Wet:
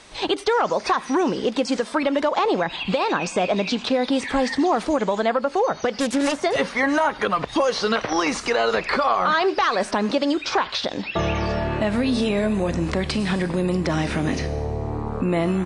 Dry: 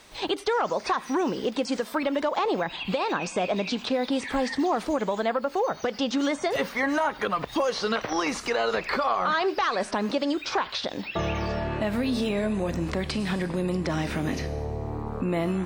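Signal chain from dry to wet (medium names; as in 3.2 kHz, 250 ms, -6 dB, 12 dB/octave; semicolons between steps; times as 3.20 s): 6.00–6.43 s: self-modulated delay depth 0.43 ms; resampled via 22.05 kHz; trim +5 dB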